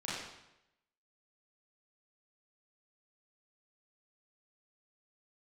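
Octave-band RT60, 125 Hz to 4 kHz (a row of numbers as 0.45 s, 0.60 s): 0.95 s, 0.85 s, 0.90 s, 0.85 s, 0.85 s, 0.80 s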